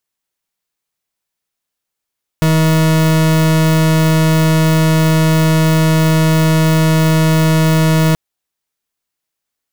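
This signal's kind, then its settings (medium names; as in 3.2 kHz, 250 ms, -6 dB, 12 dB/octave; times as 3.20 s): pulse 159 Hz, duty 40% -11 dBFS 5.73 s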